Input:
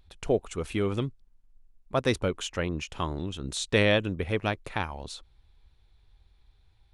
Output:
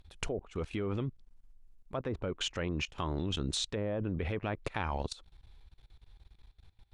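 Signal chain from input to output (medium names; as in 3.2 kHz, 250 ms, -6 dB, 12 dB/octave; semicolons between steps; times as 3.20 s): low-pass that closes with the level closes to 920 Hz, closed at -20 dBFS; level held to a coarse grid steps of 20 dB; trim +6.5 dB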